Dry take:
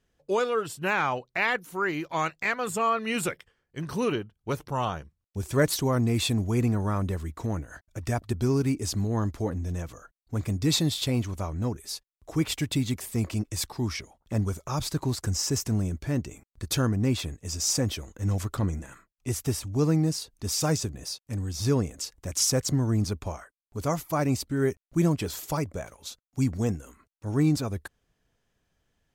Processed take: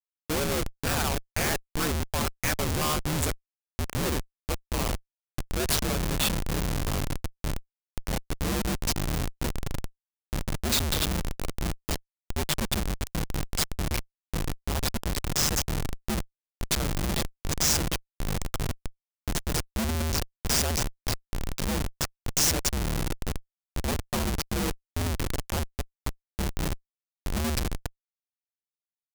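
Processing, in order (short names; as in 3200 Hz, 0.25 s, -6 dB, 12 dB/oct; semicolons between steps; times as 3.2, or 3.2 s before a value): ring modulator 75 Hz; Schmitt trigger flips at -30 dBFS; high shelf 3600 Hz +9 dB; gain +4 dB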